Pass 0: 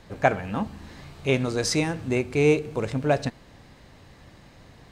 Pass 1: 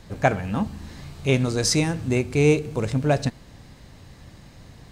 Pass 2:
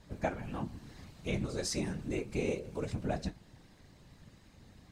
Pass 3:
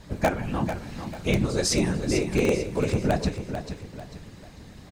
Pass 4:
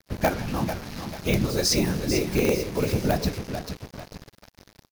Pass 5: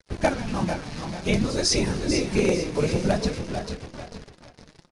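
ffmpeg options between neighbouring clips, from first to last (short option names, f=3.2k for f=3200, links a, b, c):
-af "bass=f=250:g=6,treble=f=4k:g=6"
-af "flanger=delay=9.7:depth=7.2:regen=46:speed=0.42:shape=triangular,acompressor=threshold=-25dB:ratio=2,afftfilt=real='hypot(re,im)*cos(2*PI*random(0))':imag='hypot(re,im)*sin(2*PI*random(1))':win_size=512:overlap=0.75,volume=-1.5dB"
-filter_complex "[0:a]asplit=2[a][b];[b]aeval=exprs='(mod(13.3*val(0)+1,2)-1)/13.3':c=same,volume=-9dB[c];[a][c]amix=inputs=2:normalize=0,aecho=1:1:444|888|1332|1776:0.355|0.131|0.0486|0.018,volume=8.5dB"
-af "acrusher=bits=5:mix=0:aa=0.5,aexciter=amount=1.4:drive=4.2:freq=4.5k"
-filter_complex "[0:a]flanger=delay=1.9:depth=5:regen=44:speed=0.54:shape=triangular,asplit=2[a][b];[b]adelay=469,lowpass=f=4k:p=1,volume=-11dB,asplit=2[c][d];[d]adelay=469,lowpass=f=4k:p=1,volume=0.16[e];[a][c][e]amix=inputs=3:normalize=0,aresample=22050,aresample=44100,volume=4.5dB"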